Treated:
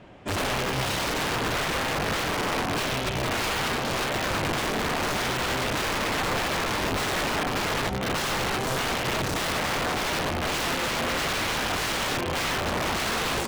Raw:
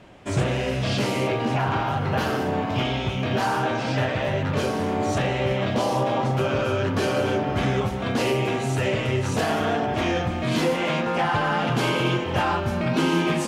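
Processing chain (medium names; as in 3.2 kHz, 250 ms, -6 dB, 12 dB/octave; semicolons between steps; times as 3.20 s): integer overflow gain 20.5 dB; treble shelf 6.2 kHz -10 dB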